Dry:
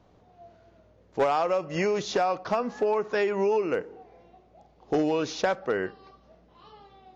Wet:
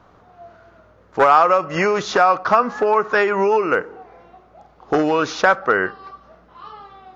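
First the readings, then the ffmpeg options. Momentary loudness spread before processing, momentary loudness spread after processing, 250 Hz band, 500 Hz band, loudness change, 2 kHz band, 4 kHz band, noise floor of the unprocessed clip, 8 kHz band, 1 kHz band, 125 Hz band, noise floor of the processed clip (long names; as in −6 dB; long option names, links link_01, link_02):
6 LU, 7 LU, +6.0 dB, +7.0 dB, +10.0 dB, +14.0 dB, +7.0 dB, −60 dBFS, can't be measured, +13.0 dB, +5.5 dB, −52 dBFS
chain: -af "equalizer=frequency=1300:width=1.4:gain=13.5,volume=5.5dB"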